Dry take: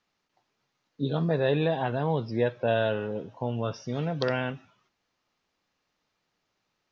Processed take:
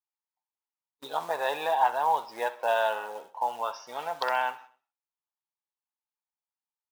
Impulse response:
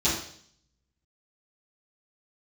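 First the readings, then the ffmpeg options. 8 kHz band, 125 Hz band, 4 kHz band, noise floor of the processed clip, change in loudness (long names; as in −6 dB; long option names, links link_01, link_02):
can't be measured, below −30 dB, 0.0 dB, below −85 dBFS, −0.5 dB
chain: -filter_complex "[0:a]acrusher=bits=6:mode=log:mix=0:aa=0.000001,highpass=frequency=880:width_type=q:width=4.9,agate=range=-30dB:threshold=-47dB:ratio=16:detection=peak,asplit=2[link_01][link_02];[link_02]aecho=0:1:64|128|192|256:0.141|0.0664|0.0312|0.0147[link_03];[link_01][link_03]amix=inputs=2:normalize=0,volume=-1dB"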